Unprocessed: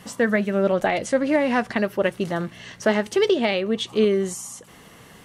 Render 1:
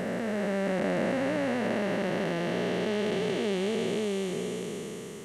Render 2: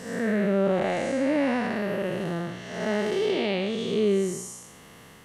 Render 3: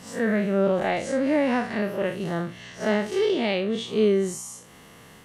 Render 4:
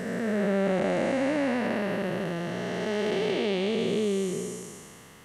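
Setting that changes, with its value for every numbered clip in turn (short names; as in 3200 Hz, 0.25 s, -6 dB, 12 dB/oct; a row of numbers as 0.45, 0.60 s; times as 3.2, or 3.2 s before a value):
time blur, width: 1.69, 0.263, 0.101, 0.646 s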